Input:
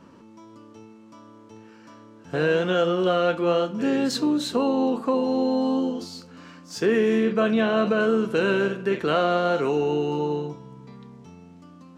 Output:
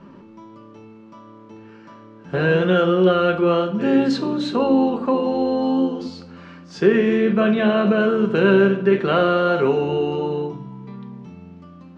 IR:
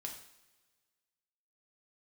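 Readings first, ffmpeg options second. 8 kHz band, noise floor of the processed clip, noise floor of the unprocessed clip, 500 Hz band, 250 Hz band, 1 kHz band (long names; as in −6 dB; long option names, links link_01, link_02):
can't be measured, −44 dBFS, −49 dBFS, +4.0 dB, +5.0 dB, +3.5 dB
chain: -filter_complex "[0:a]lowpass=3500,asplit=2[link_01][link_02];[link_02]lowshelf=frequency=480:gain=11[link_03];[1:a]atrim=start_sample=2205,adelay=5[link_04];[link_03][link_04]afir=irnorm=-1:irlink=0,volume=-6.5dB[link_05];[link_01][link_05]amix=inputs=2:normalize=0,volume=3.5dB"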